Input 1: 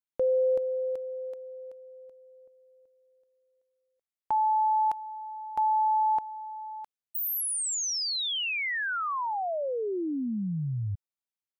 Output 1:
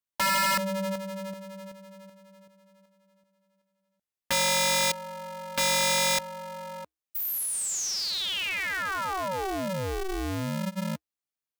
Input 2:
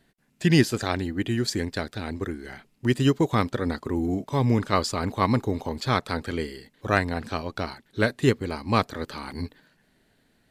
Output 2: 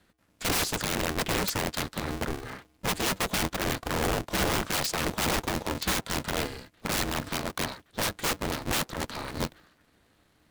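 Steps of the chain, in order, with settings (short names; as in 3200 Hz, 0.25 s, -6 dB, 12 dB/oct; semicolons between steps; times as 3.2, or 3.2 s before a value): frequency shift -130 Hz; wrapped overs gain 21.5 dB; polarity switched at an audio rate 190 Hz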